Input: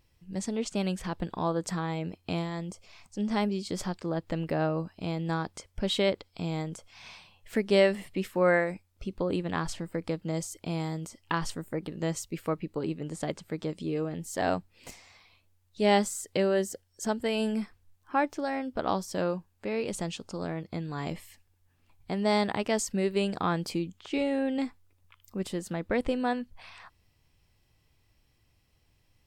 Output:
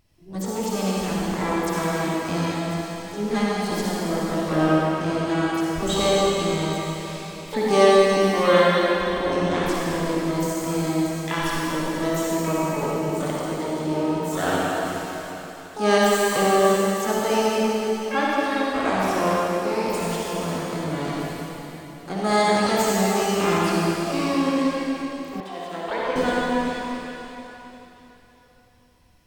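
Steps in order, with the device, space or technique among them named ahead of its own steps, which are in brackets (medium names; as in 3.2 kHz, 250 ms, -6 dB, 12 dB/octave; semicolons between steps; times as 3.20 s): shimmer-style reverb (harmony voices +12 st -5 dB; reverberation RT60 3.6 s, pre-delay 47 ms, DRR -6 dB); 25.40–26.16 s: three-band isolator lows -16 dB, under 420 Hz, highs -15 dB, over 3.9 kHz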